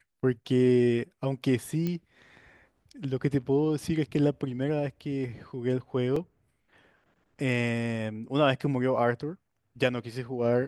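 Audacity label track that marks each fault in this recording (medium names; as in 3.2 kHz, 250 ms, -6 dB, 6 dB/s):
1.870000	1.870000	pop -19 dBFS
6.160000	6.160000	dropout 4.2 ms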